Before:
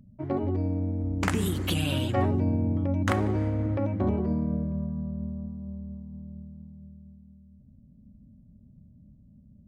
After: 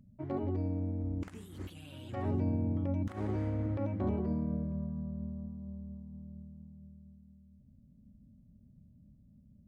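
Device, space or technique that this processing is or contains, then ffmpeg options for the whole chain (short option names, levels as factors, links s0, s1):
de-esser from a sidechain: -filter_complex "[0:a]asplit=2[s0][s1];[s1]highpass=4500,apad=whole_len=426743[s2];[s0][s2]sidechaincompress=threshold=0.00141:ratio=4:attack=1.2:release=52,volume=0.501"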